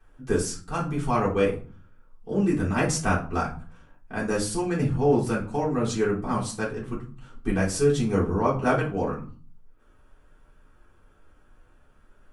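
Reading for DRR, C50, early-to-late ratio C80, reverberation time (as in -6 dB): -9.5 dB, 9.0 dB, 15.0 dB, 0.40 s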